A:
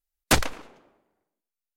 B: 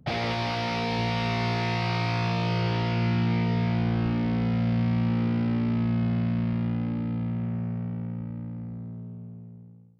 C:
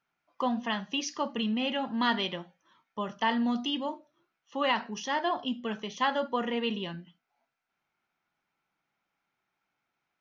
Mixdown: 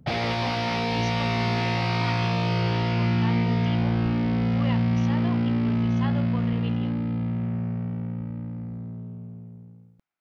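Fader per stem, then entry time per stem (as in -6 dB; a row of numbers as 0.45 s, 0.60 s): mute, +2.0 dB, -9.0 dB; mute, 0.00 s, 0.00 s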